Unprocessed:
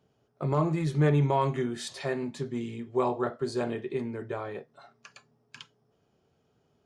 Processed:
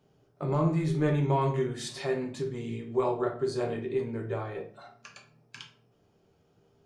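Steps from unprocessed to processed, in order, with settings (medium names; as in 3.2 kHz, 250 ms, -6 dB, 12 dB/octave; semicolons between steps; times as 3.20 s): in parallel at -1 dB: compression, threshold -41 dBFS, peak gain reduction 19.5 dB; on the sum: reverberation RT60 0.45 s, pre-delay 7 ms, DRR 2.5 dB; trim -4.5 dB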